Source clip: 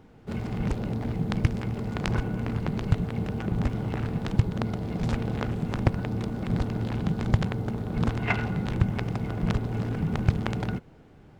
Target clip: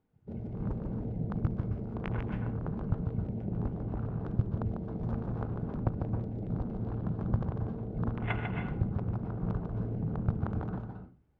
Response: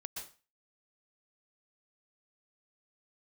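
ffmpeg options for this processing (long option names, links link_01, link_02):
-filter_complex "[0:a]afwtdn=0.0178,aemphasis=mode=reproduction:type=50fm,asplit=2[link_01][link_02];[1:a]atrim=start_sample=2205,adelay=147[link_03];[link_02][link_03]afir=irnorm=-1:irlink=0,volume=-1dB[link_04];[link_01][link_04]amix=inputs=2:normalize=0,volume=-8dB"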